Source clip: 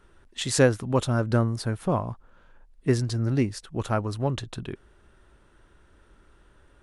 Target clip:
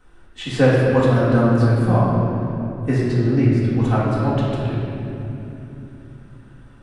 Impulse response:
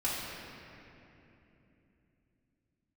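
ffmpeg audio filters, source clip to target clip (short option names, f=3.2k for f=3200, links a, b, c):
-filter_complex "[0:a]acrossover=split=3500[a][b];[b]acompressor=threshold=-47dB:ratio=4:attack=1:release=60[c];[a][c]amix=inputs=2:normalize=0,asettb=1/sr,asplit=3[d][e][f];[d]atrim=end=3.184[g];[e]atrim=start=3.18:end=3.83,asetpts=PTS-STARTPTS,afade=t=in:d=0.004:c=qsin,afade=t=out:st=0.646:d=0.004:c=qsin,highshelf=f=5k:g=-7.5[h];[f]atrim=start=3.826[i];[g][h]acrossfade=d=0.004:c1=hsin:c2=qsin[j];[j][i]acrossfade=d=0.004:c1=qsin:c2=hsin[k];[1:a]atrim=start_sample=2205[l];[k][l]afir=irnorm=-1:irlink=0"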